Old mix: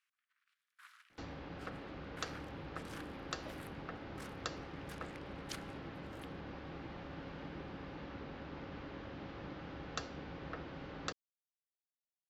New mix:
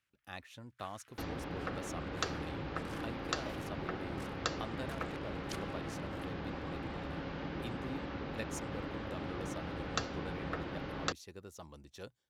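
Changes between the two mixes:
speech: unmuted
second sound +6.0 dB

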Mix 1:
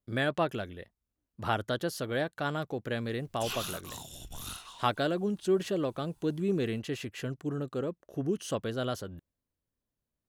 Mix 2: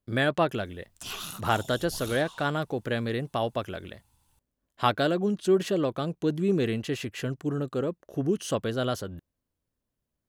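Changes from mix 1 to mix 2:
speech +4.5 dB
background: entry −2.40 s

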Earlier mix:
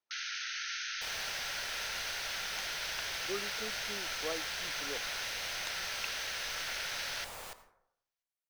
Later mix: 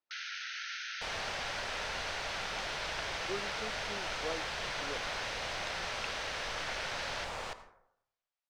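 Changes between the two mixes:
second sound +7.5 dB
master: add high-frequency loss of the air 110 metres

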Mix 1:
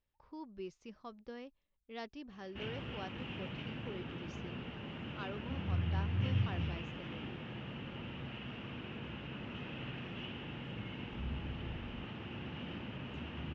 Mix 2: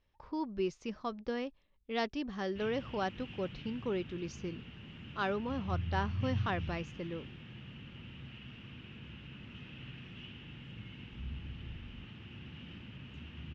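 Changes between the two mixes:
speech +11.0 dB
background: add parametric band 660 Hz −14 dB 2.6 octaves

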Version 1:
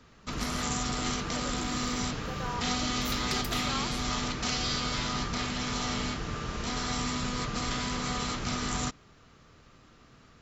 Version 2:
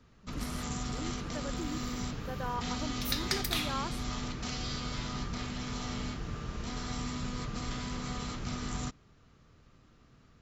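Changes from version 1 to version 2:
first sound −8.5 dB
second sound +4.5 dB
master: add low-shelf EQ 290 Hz +7.5 dB

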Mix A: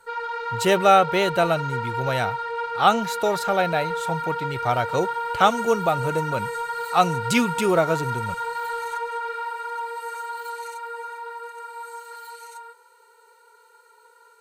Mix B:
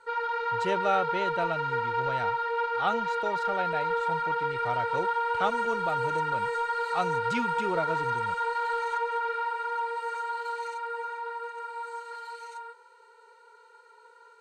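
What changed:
speech −11.0 dB
master: add high-frequency loss of the air 96 metres

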